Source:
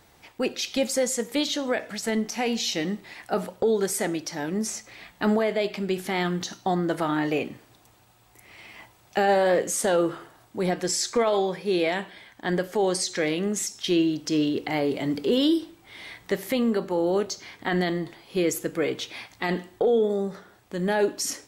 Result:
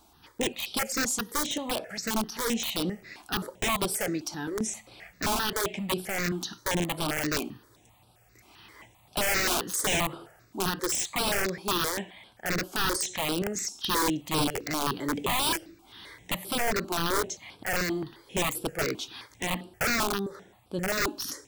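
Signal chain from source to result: integer overflow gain 19 dB; stepped phaser 7.6 Hz 500–6600 Hz

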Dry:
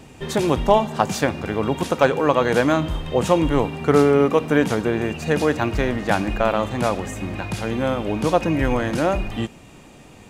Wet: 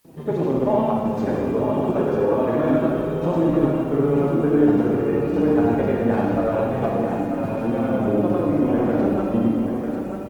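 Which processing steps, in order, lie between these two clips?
flange 0.29 Hz, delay 5.9 ms, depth 5.4 ms, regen +25%; hard clipper -10.5 dBFS, distortion -23 dB; granulator, pitch spread up and down by 0 st; band-pass filter 300 Hz, Q 0.73; peak limiter -18.5 dBFS, peak gain reduction 7 dB; added noise white -69 dBFS; on a send: delay 942 ms -6.5 dB; on the sum: Schroeder reverb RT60 1.8 s, combs from 27 ms, DRR -1.5 dB; trim +5 dB; Opus 20 kbps 48 kHz

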